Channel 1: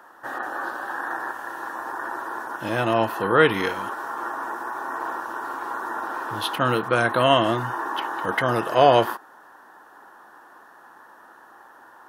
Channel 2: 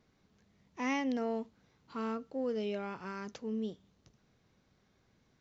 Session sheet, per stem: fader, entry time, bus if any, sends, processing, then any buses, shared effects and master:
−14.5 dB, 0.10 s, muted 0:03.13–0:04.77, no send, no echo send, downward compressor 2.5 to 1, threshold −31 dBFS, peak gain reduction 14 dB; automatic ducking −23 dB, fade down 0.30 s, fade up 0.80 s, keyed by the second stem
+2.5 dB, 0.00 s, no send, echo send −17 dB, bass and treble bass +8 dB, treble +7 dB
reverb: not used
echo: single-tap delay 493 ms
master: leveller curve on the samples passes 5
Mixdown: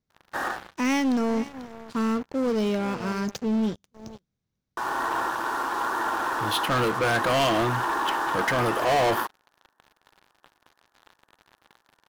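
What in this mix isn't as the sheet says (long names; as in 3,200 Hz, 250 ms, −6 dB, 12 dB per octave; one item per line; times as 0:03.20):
stem 1: missing downward compressor 2.5 to 1, threshold −31 dBFS, peak gain reduction 14 dB
stem 2 +2.5 dB → −8.0 dB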